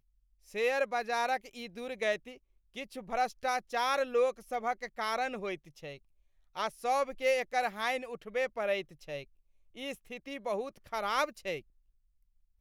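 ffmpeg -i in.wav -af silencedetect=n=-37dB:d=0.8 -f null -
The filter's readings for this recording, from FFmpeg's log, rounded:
silence_start: 11.59
silence_end: 12.60 | silence_duration: 1.01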